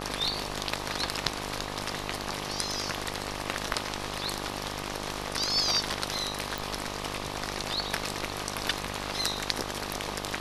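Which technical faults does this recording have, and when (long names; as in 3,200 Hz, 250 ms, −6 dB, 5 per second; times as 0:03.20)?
mains buzz 50 Hz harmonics 25 −38 dBFS
0:06.58: click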